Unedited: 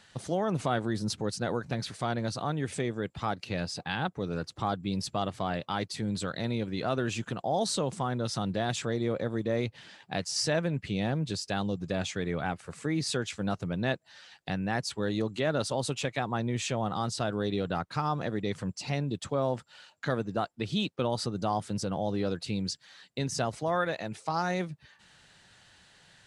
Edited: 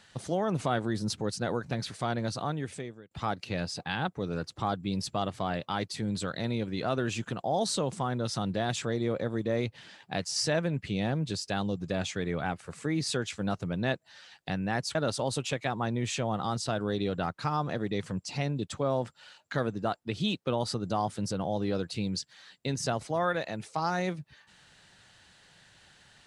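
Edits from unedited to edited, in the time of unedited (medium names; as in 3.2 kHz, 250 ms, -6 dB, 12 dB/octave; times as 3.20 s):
2.43–3.11 s: fade out
14.95–15.47 s: delete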